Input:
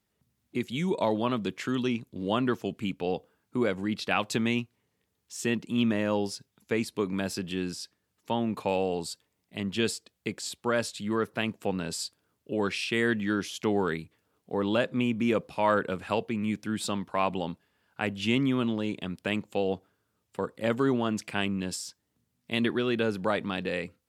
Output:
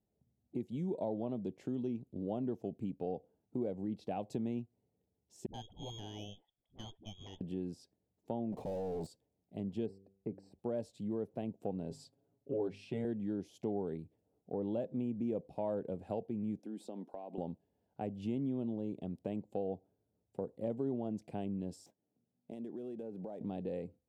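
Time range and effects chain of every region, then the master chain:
5.46–7.41 inverted band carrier 3500 Hz + dispersion highs, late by 80 ms, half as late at 350 Hz + tube stage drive 19 dB, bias 0.75
8.52–9.07 sample leveller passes 3 + hard clip -31 dBFS
9.86–10.59 running mean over 13 samples + de-hum 97.33 Hz, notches 5
11.9–13.05 high shelf 6100 Hz -9 dB + notches 50/100/150/200/250 Hz + comb 7.3 ms, depth 100%
16.59–17.38 HPF 230 Hz 24 dB/oct + compressor 12:1, threshold -34 dBFS
21.86–23.41 median filter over 9 samples + HPF 170 Hz + compressor 5:1, threshold -37 dBFS
whole clip: EQ curve 760 Hz 0 dB, 1200 Hz -24 dB, 5900 Hz -18 dB; compressor 2:1, threshold -35 dBFS; gain -3 dB

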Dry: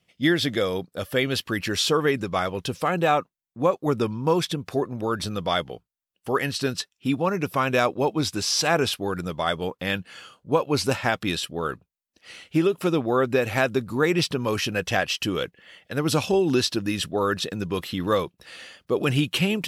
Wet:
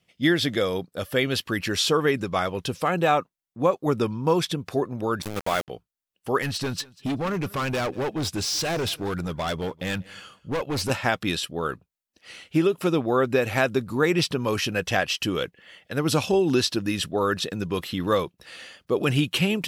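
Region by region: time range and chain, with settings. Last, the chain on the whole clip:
5.22–5.68 band shelf 4300 Hz -9 dB 1 oct + sample gate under -26.5 dBFS
6.42–10.9 low shelf 110 Hz +8.5 dB + overloaded stage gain 23.5 dB + feedback echo 0.191 s, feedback 15%, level -23 dB
whole clip: dry

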